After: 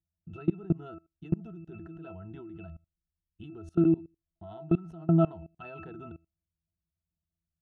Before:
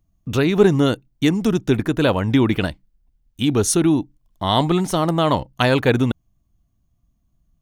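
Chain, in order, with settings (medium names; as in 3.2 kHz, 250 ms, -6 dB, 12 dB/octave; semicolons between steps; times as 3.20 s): dynamic bell 1.1 kHz, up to +6 dB, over -35 dBFS, Q 2.1; pitch-class resonator E, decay 0.2 s; level held to a coarse grid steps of 23 dB; trim +2.5 dB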